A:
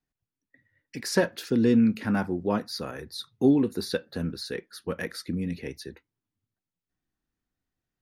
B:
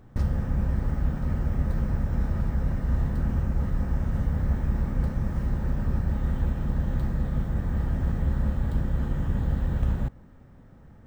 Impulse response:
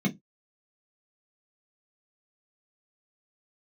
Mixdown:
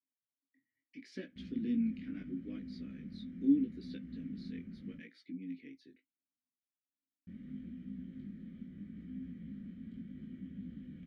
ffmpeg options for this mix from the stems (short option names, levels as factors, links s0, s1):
-filter_complex "[0:a]lowpass=4700,aemphasis=mode=production:type=50fm,volume=0.708[s0];[1:a]adelay=1200,volume=0.668,asplit=3[s1][s2][s3];[s1]atrim=end=4.98,asetpts=PTS-STARTPTS,afade=t=out:st=4.976:d=0.004:c=hsin[s4];[s2]atrim=start=4.98:end=7.27,asetpts=PTS-STARTPTS,volume=0[s5];[s3]atrim=start=7.27,asetpts=PTS-STARTPTS,afade=t=in:d=0.004:c=hsin[s6];[s4][s5][s6]concat=n=3:v=0:a=1,asplit=2[s7][s8];[s8]volume=0.112[s9];[2:a]atrim=start_sample=2205[s10];[s9][s10]afir=irnorm=-1:irlink=0[s11];[s0][s7][s11]amix=inputs=3:normalize=0,flanger=delay=15.5:depth=7.6:speed=0.76,asplit=3[s12][s13][s14];[s12]bandpass=f=270:t=q:w=8,volume=1[s15];[s13]bandpass=f=2290:t=q:w=8,volume=0.501[s16];[s14]bandpass=f=3010:t=q:w=8,volume=0.355[s17];[s15][s16][s17]amix=inputs=3:normalize=0"